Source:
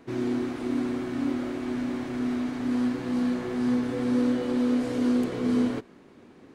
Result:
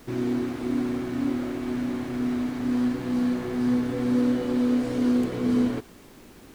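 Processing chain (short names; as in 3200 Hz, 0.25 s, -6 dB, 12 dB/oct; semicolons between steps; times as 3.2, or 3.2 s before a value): low shelf 150 Hz +6 dB; added noise pink -53 dBFS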